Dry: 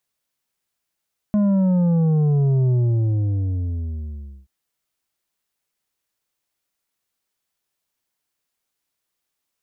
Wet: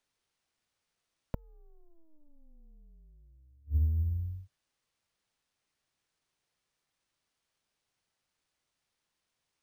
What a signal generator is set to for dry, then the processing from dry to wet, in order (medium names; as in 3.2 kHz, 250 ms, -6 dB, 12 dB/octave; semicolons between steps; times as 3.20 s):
sub drop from 210 Hz, over 3.13 s, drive 7 dB, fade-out 1.77 s, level -15.5 dB
frequency shift -160 Hz; inverted gate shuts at -19 dBFS, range -38 dB; careless resampling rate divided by 3×, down filtered, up hold